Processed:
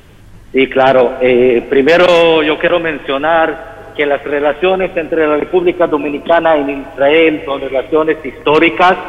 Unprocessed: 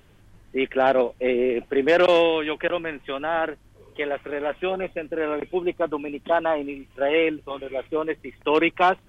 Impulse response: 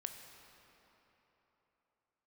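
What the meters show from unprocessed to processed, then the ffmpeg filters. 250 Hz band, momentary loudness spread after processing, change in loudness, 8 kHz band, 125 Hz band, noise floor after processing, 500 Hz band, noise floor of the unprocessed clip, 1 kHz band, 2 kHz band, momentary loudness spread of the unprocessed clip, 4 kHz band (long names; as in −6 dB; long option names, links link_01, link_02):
+12.5 dB, 8 LU, +12.0 dB, can't be measured, +15.0 dB, −36 dBFS, +12.0 dB, −54 dBFS, +11.5 dB, +12.5 dB, 12 LU, +12.5 dB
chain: -filter_complex "[0:a]asplit=2[link_01][link_02];[1:a]atrim=start_sample=2205,asetrate=70560,aresample=44100[link_03];[link_02][link_03]afir=irnorm=-1:irlink=0,volume=0.5dB[link_04];[link_01][link_04]amix=inputs=2:normalize=0,apsyclip=13dB,volume=-2dB"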